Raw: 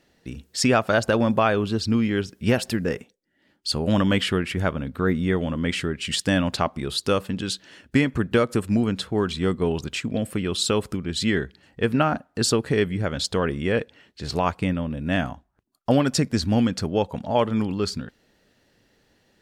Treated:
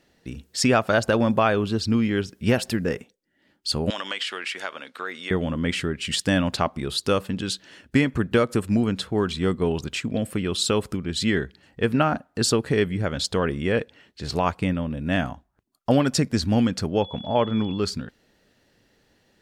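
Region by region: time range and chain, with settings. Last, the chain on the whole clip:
3.9–5.31 tilt +4.5 dB/oct + compressor, threshold -24 dBFS + BPF 410–5300 Hz
17–17.77 whine 3400 Hz -36 dBFS + air absorption 160 m
whole clip: dry

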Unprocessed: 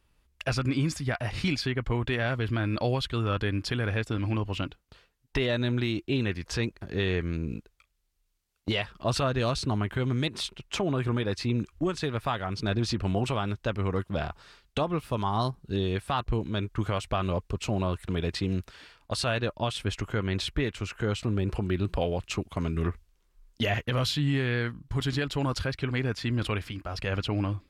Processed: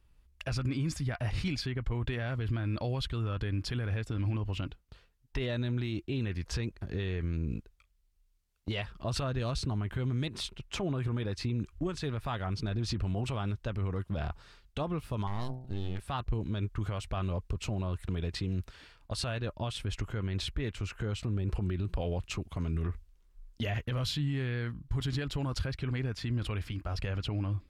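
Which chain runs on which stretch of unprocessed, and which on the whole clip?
15.27–16 half-wave gain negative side -12 dB + de-hum 63.74 Hz, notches 14
whole clip: low shelf 130 Hz +11 dB; limiter -19.5 dBFS; gain -4.5 dB

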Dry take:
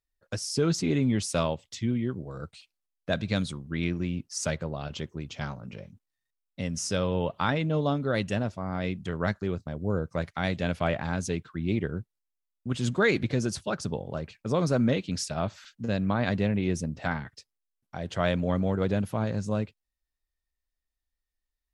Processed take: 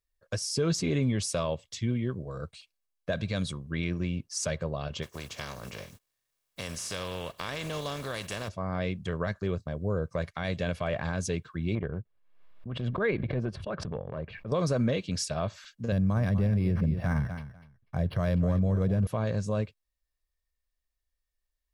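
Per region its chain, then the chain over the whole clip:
5.02–8.47 spectral contrast lowered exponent 0.49 + compressor 2.5:1, threshold -35 dBFS
11.75–14.52 transient shaper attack -11 dB, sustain -7 dB + air absorption 470 m + backwards sustainer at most 65 dB/s
15.92–19.07 tone controls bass +11 dB, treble -5 dB + feedback echo 0.246 s, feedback 16%, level -14 dB + decimation joined by straight lines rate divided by 6×
whole clip: comb 1.8 ms, depth 36%; limiter -19 dBFS

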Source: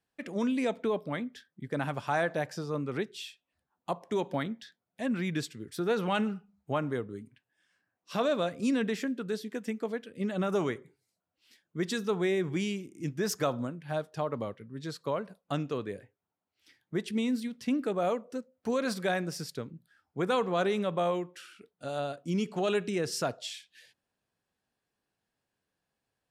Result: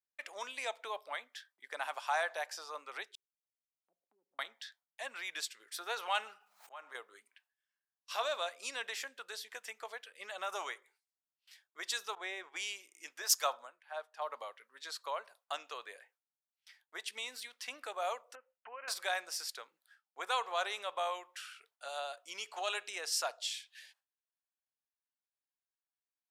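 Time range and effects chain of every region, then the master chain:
3.15–4.39 inverse Chebyshev low-pass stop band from 1400 Hz, stop band 80 dB + compressor 2:1, threshold -53 dBFS
6.24–6.95 auto swell 0.661 s + backwards sustainer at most 32 dB/s
12.15–12.56 LPF 2400 Hz 6 dB/oct + expander -32 dBFS
13.22–14.22 low shelf 400 Hz -5.5 dB + three-band expander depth 100%
18.35–18.88 brick-wall FIR low-pass 3100 Hz + compressor 2:1, threshold -43 dBFS
whole clip: gate with hold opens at -54 dBFS; HPF 790 Hz 24 dB/oct; dynamic EQ 1500 Hz, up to -5 dB, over -49 dBFS, Q 0.81; gain +2.5 dB

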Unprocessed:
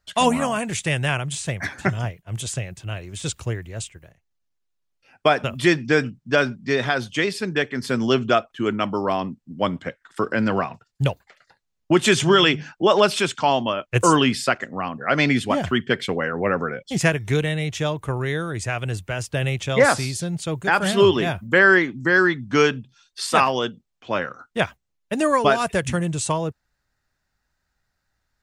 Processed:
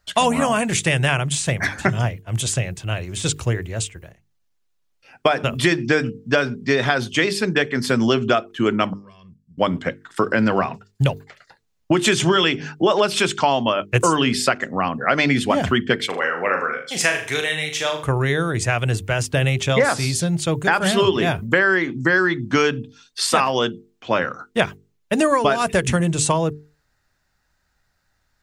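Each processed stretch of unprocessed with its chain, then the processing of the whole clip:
8.93–9.58 compressor, threshold -28 dBFS + passive tone stack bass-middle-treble 6-0-2 + comb 1.8 ms, depth 90%
16.06–18.03 HPF 1100 Hz 6 dB/oct + notch 6800 Hz, Q 28 + flutter echo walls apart 6.8 m, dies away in 0.39 s
whole clip: notches 50/100/150/200/250/300/350/400/450 Hz; compressor 6:1, threshold -20 dBFS; gain +6.5 dB

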